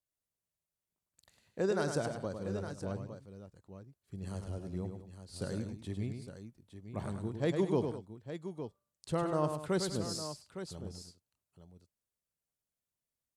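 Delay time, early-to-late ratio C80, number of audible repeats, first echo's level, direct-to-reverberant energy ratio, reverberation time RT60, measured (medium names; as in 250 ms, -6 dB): 103 ms, no reverb, 3, -6.5 dB, no reverb, no reverb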